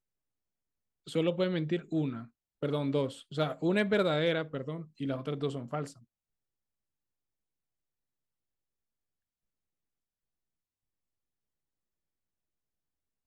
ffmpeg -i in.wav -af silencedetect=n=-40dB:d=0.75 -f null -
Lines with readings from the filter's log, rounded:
silence_start: 0.00
silence_end: 1.07 | silence_duration: 1.07
silence_start: 5.91
silence_end: 13.26 | silence_duration: 7.36